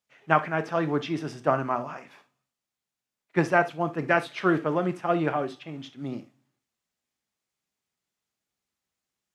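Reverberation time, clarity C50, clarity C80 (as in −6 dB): non-exponential decay, 16.0 dB, 32.5 dB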